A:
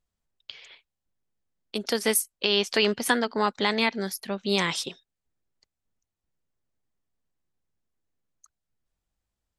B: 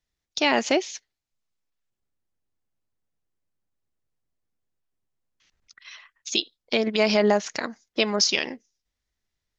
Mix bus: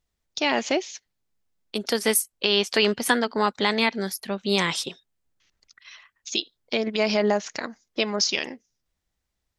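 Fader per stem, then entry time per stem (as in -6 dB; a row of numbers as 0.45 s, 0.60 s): +2.0 dB, -2.0 dB; 0.00 s, 0.00 s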